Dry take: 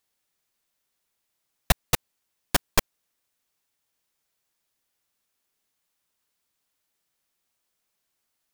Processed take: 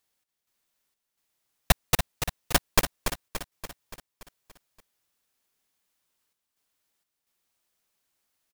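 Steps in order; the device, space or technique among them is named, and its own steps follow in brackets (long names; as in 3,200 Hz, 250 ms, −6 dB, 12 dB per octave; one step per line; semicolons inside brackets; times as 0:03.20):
trance gate with a delay (gate pattern "x.xx.xxxxxxxx" 64 BPM −12 dB; repeating echo 287 ms, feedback 56%, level −8 dB)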